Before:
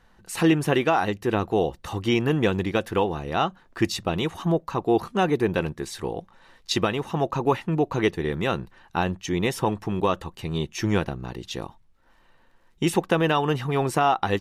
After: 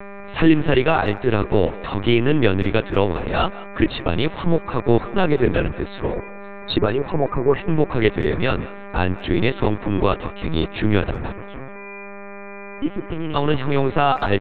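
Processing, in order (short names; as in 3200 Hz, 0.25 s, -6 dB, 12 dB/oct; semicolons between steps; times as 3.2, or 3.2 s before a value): 6.13–7.59 formant sharpening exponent 2; 11.32–13.36 vocal tract filter i; dynamic EQ 890 Hz, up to -5 dB, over -35 dBFS, Q 1.5; buzz 400 Hz, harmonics 6, -42 dBFS -5 dB/oct; in parallel at -8 dB: soft clip -18 dBFS, distortion -14 dB; on the sum: LPC vocoder at 8 kHz pitch kept; speakerphone echo 0.18 s, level -18 dB; gain +4 dB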